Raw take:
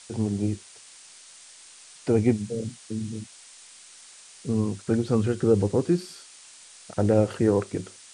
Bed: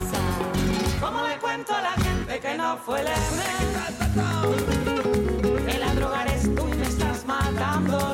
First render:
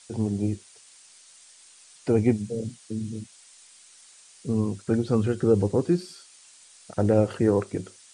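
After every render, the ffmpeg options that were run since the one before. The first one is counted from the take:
-af "afftdn=nr=6:nf=-49"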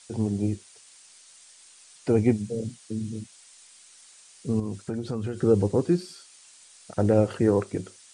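-filter_complex "[0:a]asettb=1/sr,asplit=3[s0][s1][s2];[s0]atrim=end=4.594[s3];[s1]atrim=start=4.59:end=5.38,asetpts=PTS-STARTPTS,afade=t=in:d=0.004:c=qsin,afade=t=out:st=0.786:d=0.004:c=qsin,acompressor=threshold=0.0501:ratio=5:attack=3.2:release=140:knee=1:detection=peak[s4];[s2]atrim=start=5.376[s5];[s3][s4]acrossfade=d=0.004:c1=hsin:c2=qsin[s6];[s6][s5]acrossfade=d=0.004:c1=qsin:c2=hsin"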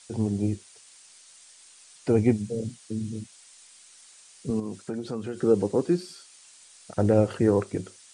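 -filter_complex "[0:a]asettb=1/sr,asplit=3[s0][s1][s2];[s0]atrim=end=4.504[s3];[s1]atrim=start=4.5:end=6.06,asetpts=PTS-STARTPTS,afade=t=in:d=0.004:c=qsin,afade=t=out:st=1.556:d=0.004:c=qsin,highpass=180[s4];[s2]atrim=start=6.056[s5];[s3][s4]acrossfade=d=0.004:c1=hsin:c2=qsin[s6];[s6][s5]acrossfade=d=0.004:c1=qsin:c2=hsin"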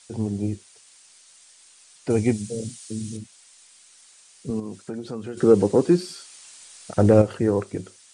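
-filter_complex "[0:a]asettb=1/sr,asplit=3[s0][s1][s2];[s0]atrim=end=2.104[s3];[s1]atrim=start=2.1:end=3.17,asetpts=PTS-STARTPTS,afade=t=in:d=0.004:c=qsin,afade=t=out:st=1.066:d=0.004:c=qsin,highshelf=f=3100:g=11.5[s4];[s2]atrim=start=3.166[s5];[s3][s4]acrossfade=d=0.004:c1=hsin:c2=qsin[s6];[s6][s5]acrossfade=d=0.004:c1=qsin:c2=hsin,asettb=1/sr,asplit=3[s7][s8][s9];[s7]atrim=end=5.374[s10];[s8]atrim=start=5.37:end=7.22,asetpts=PTS-STARTPTS,afade=t=in:d=0.004:c=qsin,afade=t=out:st=1.846:d=0.004:c=qsin,acontrast=61[s11];[s9]atrim=start=7.216[s12];[s10][s11]acrossfade=d=0.004:c1=hsin:c2=qsin[s13];[s13][s12]acrossfade=d=0.004:c1=qsin:c2=hsin"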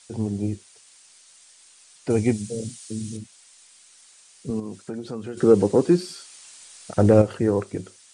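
-af anull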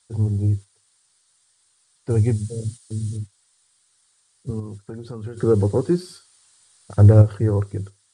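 -af "agate=range=0.447:threshold=0.0126:ratio=16:detection=peak,equalizer=f=100:t=o:w=0.67:g=12,equalizer=f=250:t=o:w=0.67:g=-6,equalizer=f=630:t=o:w=0.67:g=-6,equalizer=f=2500:t=o:w=0.67:g=-10,equalizer=f=6300:t=o:w=0.67:g=-7"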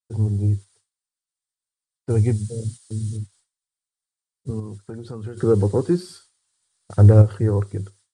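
-af "agate=range=0.0224:threshold=0.00501:ratio=3:detection=peak"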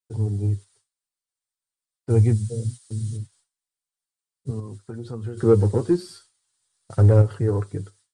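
-filter_complex "[0:a]asplit=2[s0][s1];[s1]asoftclip=type=hard:threshold=0.211,volume=0.355[s2];[s0][s2]amix=inputs=2:normalize=0,flanger=delay=6.8:depth=2.1:regen=42:speed=0.26:shape=sinusoidal"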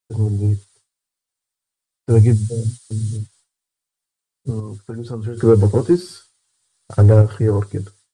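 -af "volume=1.88,alimiter=limit=0.708:level=0:latency=1"

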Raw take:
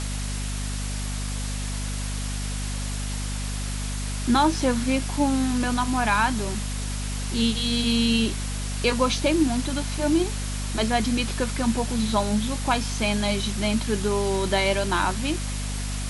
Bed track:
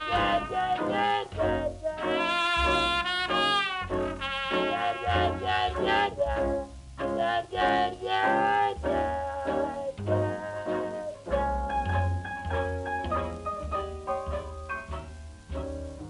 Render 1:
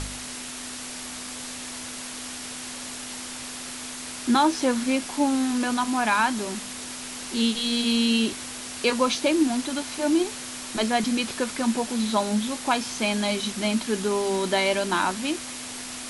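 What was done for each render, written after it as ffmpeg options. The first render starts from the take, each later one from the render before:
-af "bandreject=f=50:t=h:w=4,bandreject=f=100:t=h:w=4,bandreject=f=150:t=h:w=4,bandreject=f=200:t=h:w=4"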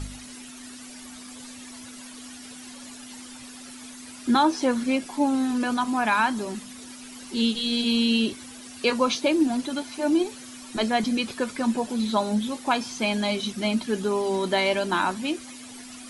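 -af "afftdn=nr=12:nf=-36"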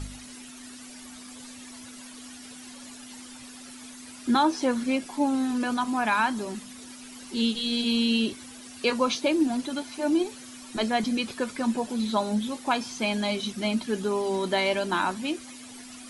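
-af "volume=0.794"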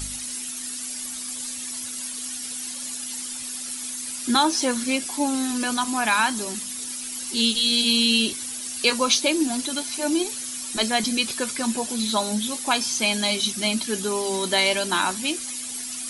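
-af "crystalizer=i=5:c=0"

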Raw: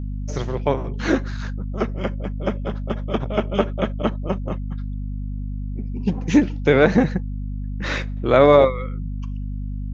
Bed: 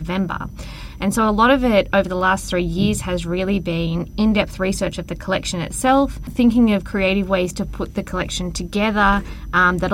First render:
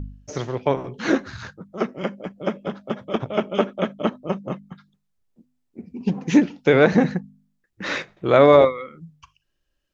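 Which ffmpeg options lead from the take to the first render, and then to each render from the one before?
-af "bandreject=f=50:t=h:w=4,bandreject=f=100:t=h:w=4,bandreject=f=150:t=h:w=4,bandreject=f=200:t=h:w=4,bandreject=f=250:t=h:w=4"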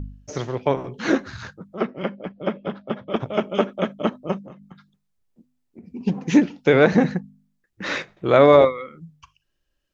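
-filter_complex "[0:a]asettb=1/sr,asplit=3[s0][s1][s2];[s0]atrim=end=1.744[s3];[s1]atrim=start=1.74:end=3.16,asetpts=PTS-STARTPTS,afade=t=in:d=0.004:c=qsin,afade=t=out:st=1.416:d=0.004:c=qsin,lowpass=f=4300:w=0.5412,lowpass=f=4300:w=1.3066[s4];[s2]atrim=start=3.156[s5];[s3][s4]acrossfade=d=0.004:c1=hsin:c2=qsin[s6];[s6][s5]acrossfade=d=0.004:c1=qsin:c2=hsin,asettb=1/sr,asplit=3[s7][s8][s9];[s7]atrim=end=4.414[s10];[s8]atrim=start=4.41:end=5.86,asetpts=PTS-STARTPTS,afade=t=in:d=0.004:c=qsin,afade=t=out:st=1.446:d=0.004:c=qsin,acompressor=threshold=0.0141:ratio=8:attack=3.2:release=140:knee=1:detection=peak[s11];[s9]atrim=start=5.856[s12];[s10][s11]acrossfade=d=0.004:c1=hsin:c2=qsin[s13];[s13][s12]acrossfade=d=0.004:c1=qsin:c2=hsin"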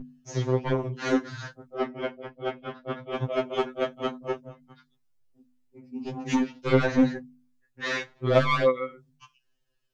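-af "asoftclip=type=tanh:threshold=0.224,afftfilt=real='re*2.45*eq(mod(b,6),0)':imag='im*2.45*eq(mod(b,6),0)':win_size=2048:overlap=0.75"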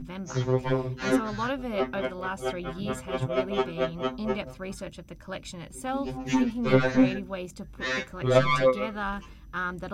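-filter_complex "[1:a]volume=0.15[s0];[0:a][s0]amix=inputs=2:normalize=0"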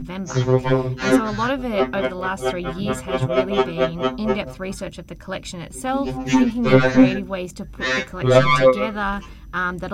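-af "volume=2.51,alimiter=limit=0.794:level=0:latency=1"

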